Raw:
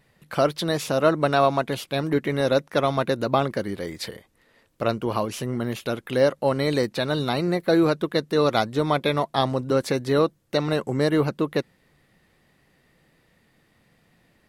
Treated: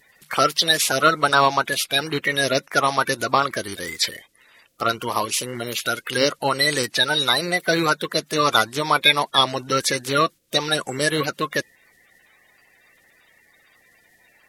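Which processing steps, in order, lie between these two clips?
bin magnitudes rounded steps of 30 dB; tilt shelf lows -10 dB, about 900 Hz; gain +4 dB

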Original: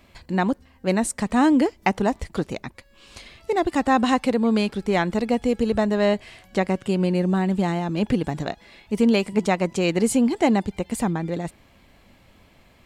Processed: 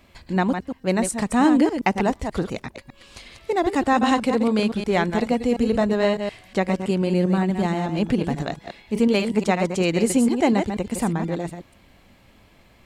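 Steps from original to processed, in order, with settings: reverse delay 0.121 s, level -7 dB

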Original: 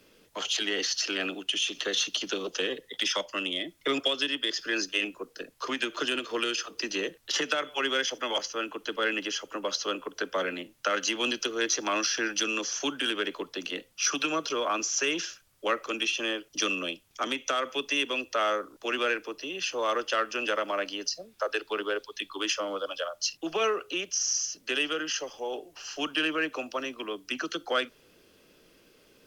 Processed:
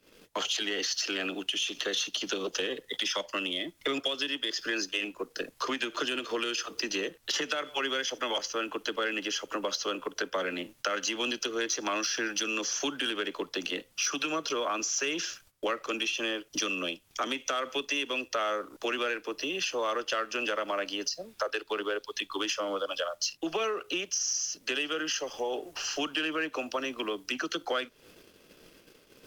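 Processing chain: gate -59 dBFS, range -13 dB; compressor 3:1, threshold -41 dBFS, peak gain reduction 14 dB; sample leveller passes 1; gain +5.5 dB

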